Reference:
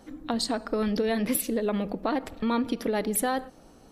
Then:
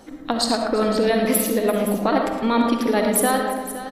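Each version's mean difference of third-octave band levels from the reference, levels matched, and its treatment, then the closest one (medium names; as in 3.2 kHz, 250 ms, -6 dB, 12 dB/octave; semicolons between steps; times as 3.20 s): 6.5 dB: bass shelf 190 Hz -6 dB; in parallel at -2.5 dB: level held to a coarse grid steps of 14 dB; on the sum: multi-tap echo 111/340/517 ms -11/-18/-13 dB; algorithmic reverb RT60 1.2 s, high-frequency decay 0.35×, pre-delay 25 ms, DRR 3.5 dB; trim +3 dB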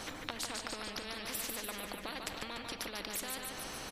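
15.5 dB: compression 10:1, threshold -38 dBFS, peak gain reduction 16.5 dB; treble shelf 5.1 kHz -10 dB; feedback delay 146 ms, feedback 52%, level -9.5 dB; spectrum-flattening compressor 4:1; trim +7.5 dB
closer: first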